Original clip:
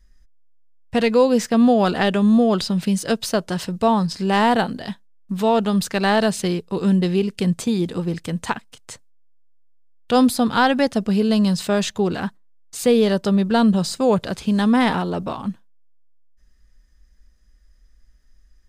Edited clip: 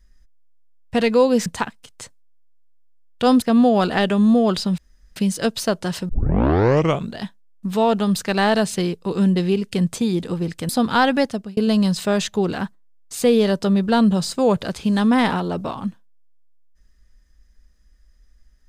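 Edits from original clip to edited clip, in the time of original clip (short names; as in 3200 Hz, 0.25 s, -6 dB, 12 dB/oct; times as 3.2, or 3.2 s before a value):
2.82 insert room tone 0.38 s
3.75 tape start 1.10 s
8.35–10.31 move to 1.46
10.82–11.19 fade out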